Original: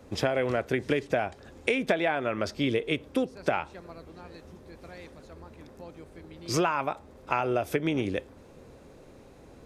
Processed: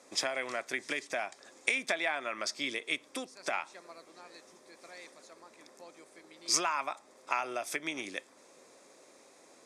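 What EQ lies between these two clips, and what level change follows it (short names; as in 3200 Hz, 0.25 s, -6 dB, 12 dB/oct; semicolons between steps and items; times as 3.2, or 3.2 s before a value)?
dynamic EQ 470 Hz, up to -7 dB, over -41 dBFS, Q 1.3; speaker cabinet 360–9500 Hz, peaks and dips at 460 Hz -5 dB, 830 Hz -4 dB, 1500 Hz -6 dB, 2900 Hz -10 dB, 4100 Hz -4 dB; tilt +3 dB/oct; 0.0 dB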